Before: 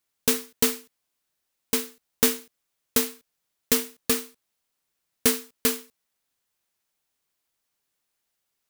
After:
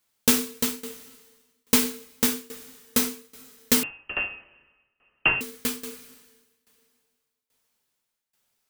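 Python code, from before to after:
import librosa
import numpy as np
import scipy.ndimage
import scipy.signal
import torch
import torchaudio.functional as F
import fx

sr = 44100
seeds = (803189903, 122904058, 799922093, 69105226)

y = fx.rev_double_slope(x, sr, seeds[0], early_s=0.45, late_s=2.4, knee_db=-22, drr_db=2.5)
y = fx.freq_invert(y, sr, carrier_hz=3000, at=(3.83, 5.41))
y = fx.tremolo_shape(y, sr, shape='saw_down', hz=1.2, depth_pct=90)
y = y * librosa.db_to_amplitude(5.0)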